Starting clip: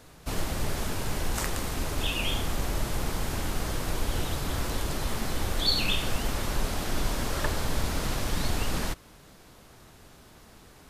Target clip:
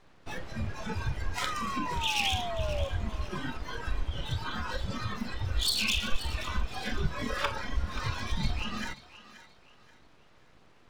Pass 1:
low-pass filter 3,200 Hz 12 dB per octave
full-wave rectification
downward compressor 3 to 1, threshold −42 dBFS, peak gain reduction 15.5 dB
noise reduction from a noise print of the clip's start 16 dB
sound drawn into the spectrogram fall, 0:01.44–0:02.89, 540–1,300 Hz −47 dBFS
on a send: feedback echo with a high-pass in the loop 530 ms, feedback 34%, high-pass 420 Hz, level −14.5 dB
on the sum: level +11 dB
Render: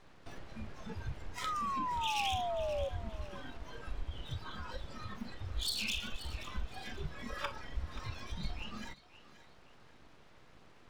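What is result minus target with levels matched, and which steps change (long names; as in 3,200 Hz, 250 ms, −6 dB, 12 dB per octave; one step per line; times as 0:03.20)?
downward compressor: peak gain reduction +7.5 dB
change: downward compressor 3 to 1, threshold −30.5 dBFS, peak gain reduction 8 dB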